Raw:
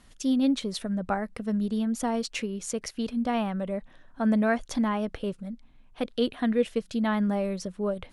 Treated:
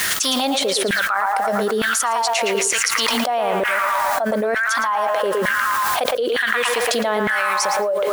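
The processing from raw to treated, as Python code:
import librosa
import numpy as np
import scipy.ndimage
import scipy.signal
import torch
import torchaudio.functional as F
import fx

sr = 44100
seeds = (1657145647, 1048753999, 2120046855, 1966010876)

p1 = fx.high_shelf(x, sr, hz=4500.0, db=9.0)
p2 = fx.echo_banded(p1, sr, ms=113, feedback_pct=75, hz=1400.0, wet_db=-5.0)
p3 = fx.filter_lfo_highpass(p2, sr, shape='saw_down', hz=1.1, low_hz=370.0, high_hz=1800.0, q=4.1)
p4 = fx.quant_dither(p3, sr, seeds[0], bits=8, dither='triangular')
p5 = p3 + (p4 * 10.0 ** (-6.0 / 20.0))
p6 = fx.env_flatten(p5, sr, amount_pct=100)
y = p6 * 10.0 ** (-11.0 / 20.0)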